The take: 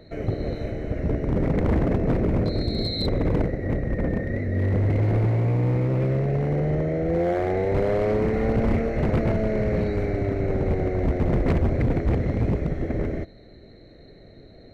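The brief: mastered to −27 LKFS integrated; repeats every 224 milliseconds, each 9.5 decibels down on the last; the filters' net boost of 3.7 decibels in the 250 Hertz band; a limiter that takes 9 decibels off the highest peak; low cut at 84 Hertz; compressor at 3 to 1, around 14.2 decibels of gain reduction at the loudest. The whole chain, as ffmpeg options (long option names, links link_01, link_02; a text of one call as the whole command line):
ffmpeg -i in.wav -af "highpass=84,equalizer=frequency=250:width_type=o:gain=5,acompressor=threshold=-37dB:ratio=3,alimiter=level_in=7dB:limit=-24dB:level=0:latency=1,volume=-7dB,aecho=1:1:224|448|672|896:0.335|0.111|0.0365|0.012,volume=12.5dB" out.wav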